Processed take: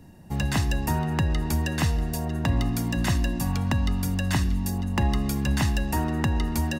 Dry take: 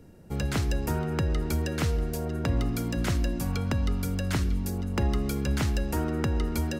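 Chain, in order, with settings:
low-shelf EQ 96 Hz −7 dB
comb filter 1.1 ms, depth 63%
level +3 dB

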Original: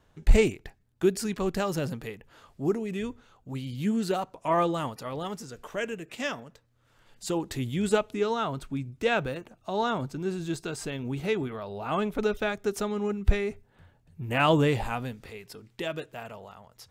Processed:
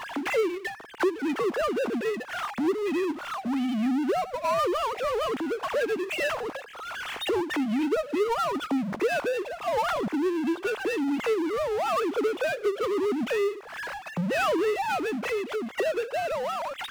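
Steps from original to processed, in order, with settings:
three sine waves on the formant tracks
power curve on the samples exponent 0.5
downward compressor 2.5 to 1, threshold −37 dBFS, peak gain reduction 18 dB
level +5.5 dB

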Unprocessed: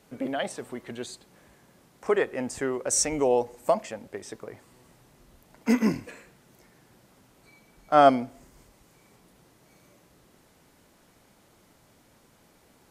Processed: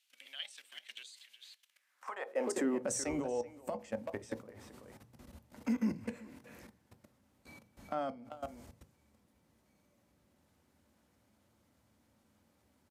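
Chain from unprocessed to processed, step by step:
downward compressor 4 to 1, threshold −32 dBFS, peak gain reduction 17 dB
far-end echo of a speakerphone 380 ms, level −7 dB
output level in coarse steps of 19 dB
on a send at −11 dB: convolution reverb RT60 0.20 s, pre-delay 3 ms
on the sum: high-pass filter sweep 3,000 Hz → 79 Hz, 0:01.66–0:03.12
level +1 dB

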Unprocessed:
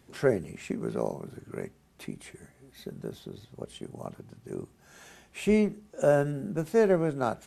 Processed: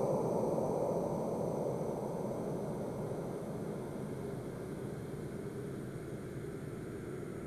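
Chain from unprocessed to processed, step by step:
reversed piece by piece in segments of 51 ms
echo ahead of the sound 223 ms −15.5 dB
extreme stretch with random phases 26×, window 0.50 s, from 0:01.14
level +1 dB

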